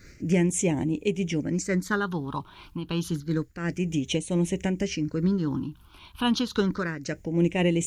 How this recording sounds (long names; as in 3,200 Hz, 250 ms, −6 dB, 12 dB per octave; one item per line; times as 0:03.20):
phaser sweep stages 6, 0.29 Hz, lowest notch 510–1,300 Hz
a quantiser's noise floor 12 bits, dither none
amplitude modulation by smooth noise